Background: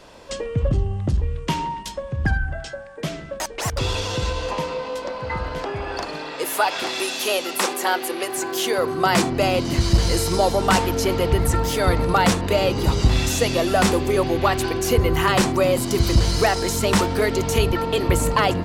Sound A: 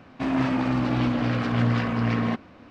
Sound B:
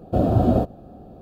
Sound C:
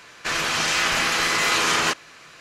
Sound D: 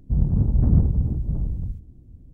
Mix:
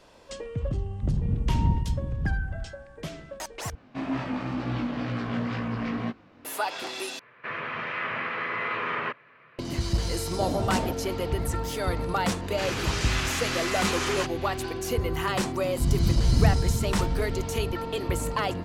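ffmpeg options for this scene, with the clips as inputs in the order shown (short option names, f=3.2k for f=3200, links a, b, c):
-filter_complex "[4:a]asplit=2[a][b];[3:a]asplit=2[c][d];[0:a]volume=-9dB[e];[1:a]flanger=delay=17:depth=5:speed=2.1[f];[c]highpass=f=110:w=0.5412,highpass=f=110:w=1.3066,equalizer=f=120:t=q:w=4:g=4,equalizer=f=170:t=q:w=4:g=-6,equalizer=f=310:t=q:w=4:g=-9,equalizer=f=770:t=q:w=4:g=-9,equalizer=f=1.5k:t=q:w=4:g=-5,lowpass=f=2.1k:w=0.5412,lowpass=f=2.1k:w=1.3066[g];[2:a]acompressor=threshold=-24dB:ratio=6:attack=3.2:release=140:knee=1:detection=peak[h];[e]asplit=3[i][j][k];[i]atrim=end=3.754[l];[f]atrim=end=2.7,asetpts=PTS-STARTPTS,volume=-3dB[m];[j]atrim=start=6.446:end=7.194[n];[g]atrim=end=2.4,asetpts=PTS-STARTPTS,volume=-4dB[o];[k]atrim=start=9.586[p];[a]atrim=end=2.33,asetpts=PTS-STARTPTS,volume=-6.5dB,afade=t=in:d=0.004:c=hsin,afade=t=out:st=2.326:d=0.004:c=hsin,adelay=920[q];[h]atrim=end=1.21,asetpts=PTS-STARTPTS,volume=-1.5dB,afade=t=in:d=0.004:c=hsin,afade=t=out:st=1.206:d=0.004:c=hsin,adelay=10280[r];[d]atrim=end=2.4,asetpts=PTS-STARTPTS,volume=-9.5dB,afade=t=in:d=0.004:c=hsin,afade=t=out:st=2.396:d=0.004:c=hsin,adelay=12330[s];[b]atrim=end=2.33,asetpts=PTS-STARTPTS,volume=-3.5dB,afade=t=in:d=0.004:c=hsin,afade=t=out:st=2.326:d=0.004:c=hsin,adelay=15700[t];[l][m]acrossfade=d=0.004:c1=hsin:c2=hsin[u];[u][n]acrossfade=d=0.004:c1=hsin:c2=hsin[v];[v][o]acrossfade=d=0.004:c1=hsin:c2=hsin[w];[w][p]acrossfade=d=0.004:c1=hsin:c2=hsin[x];[x][q][r][s][t]amix=inputs=5:normalize=0"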